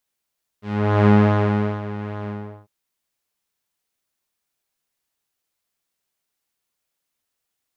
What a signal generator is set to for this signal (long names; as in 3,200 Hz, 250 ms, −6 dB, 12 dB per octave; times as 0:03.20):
subtractive patch with pulse-width modulation G#3, sub −2 dB, filter lowpass, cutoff 940 Hz, Q 0.76, filter envelope 2 octaves, filter decay 0.19 s, filter sustain 45%, attack 438 ms, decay 0.76 s, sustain −15.5 dB, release 0.39 s, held 1.66 s, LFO 2.4 Hz, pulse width 23%, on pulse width 15%